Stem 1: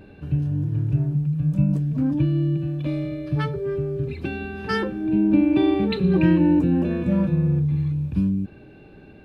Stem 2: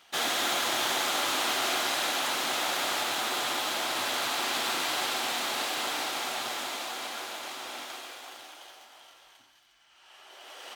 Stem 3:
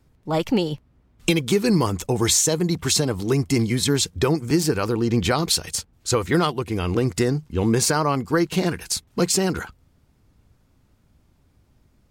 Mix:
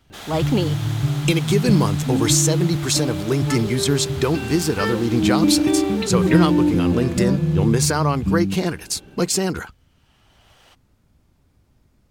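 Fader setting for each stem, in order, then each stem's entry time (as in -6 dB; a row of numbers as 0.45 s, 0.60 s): +0.5 dB, -8.5 dB, 0.0 dB; 0.10 s, 0.00 s, 0.00 s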